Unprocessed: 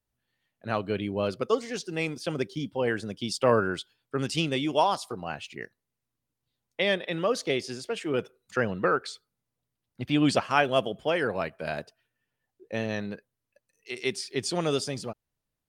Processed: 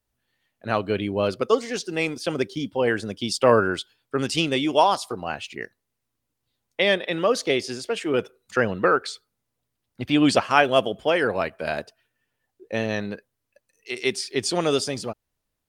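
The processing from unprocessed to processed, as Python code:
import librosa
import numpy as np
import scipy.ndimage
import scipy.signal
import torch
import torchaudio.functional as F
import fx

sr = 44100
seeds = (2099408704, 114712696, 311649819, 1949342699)

y = fx.peak_eq(x, sr, hz=150.0, db=-5.5, octaves=0.7)
y = y * 10.0 ** (5.5 / 20.0)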